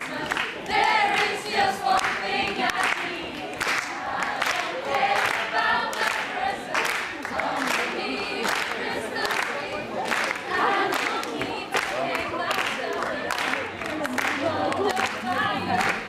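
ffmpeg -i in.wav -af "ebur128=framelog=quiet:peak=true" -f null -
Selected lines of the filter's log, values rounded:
Integrated loudness:
  I:         -24.9 LUFS
  Threshold: -34.9 LUFS
Loudness range:
  LRA:         2.7 LU
  Threshold: -45.1 LUFS
  LRA low:   -26.2 LUFS
  LRA high:  -23.4 LUFS
True peak:
  Peak:       -7.0 dBFS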